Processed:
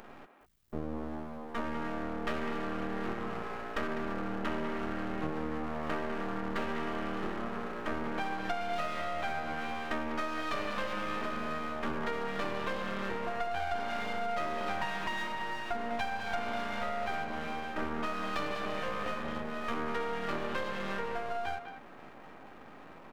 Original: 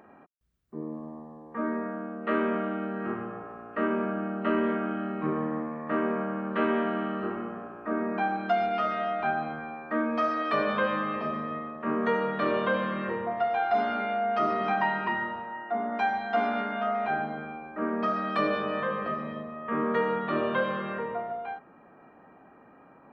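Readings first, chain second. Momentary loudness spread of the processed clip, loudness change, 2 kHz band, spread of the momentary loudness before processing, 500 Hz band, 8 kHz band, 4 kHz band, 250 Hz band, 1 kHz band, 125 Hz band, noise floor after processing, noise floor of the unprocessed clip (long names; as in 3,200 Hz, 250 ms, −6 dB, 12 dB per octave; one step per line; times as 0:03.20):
5 LU, −6.5 dB, −4.5 dB, 10 LU, −7.5 dB, can't be measured, +1.0 dB, −7.5 dB, −6.5 dB, −4.0 dB, −51 dBFS, −55 dBFS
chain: high-shelf EQ 3,500 Hz +8.5 dB
half-wave rectification
downward compressor 6 to 1, threshold −37 dBFS, peak gain reduction 14.5 dB
far-end echo of a speakerphone 200 ms, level −8 dB
level +6.5 dB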